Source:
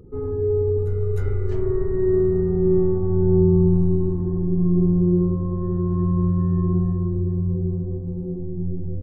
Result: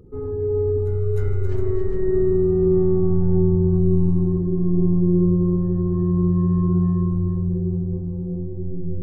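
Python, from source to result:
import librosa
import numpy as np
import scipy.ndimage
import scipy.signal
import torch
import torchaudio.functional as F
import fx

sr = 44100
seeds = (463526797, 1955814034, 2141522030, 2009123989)

y = fx.echo_multitap(x, sr, ms=(67, 157, 271, 408), db=(-19.5, -15.0, -8.0, -8.0))
y = y * librosa.db_to_amplitude(-1.5)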